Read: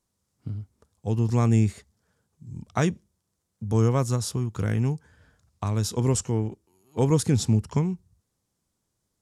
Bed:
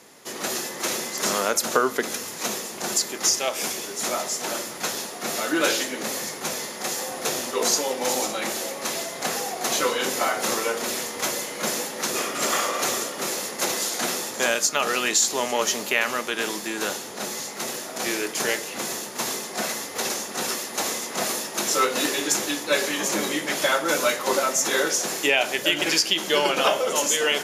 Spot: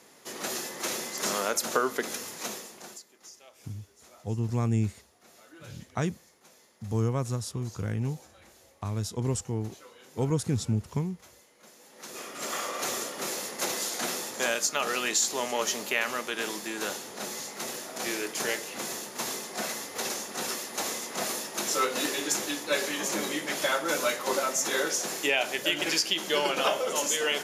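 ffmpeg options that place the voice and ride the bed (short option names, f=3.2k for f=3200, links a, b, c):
-filter_complex "[0:a]adelay=3200,volume=-6dB[a];[1:a]volume=17.5dB,afade=t=out:st=2.27:d=0.76:silence=0.0707946,afade=t=in:st=11.79:d=1.29:silence=0.0707946[b];[a][b]amix=inputs=2:normalize=0"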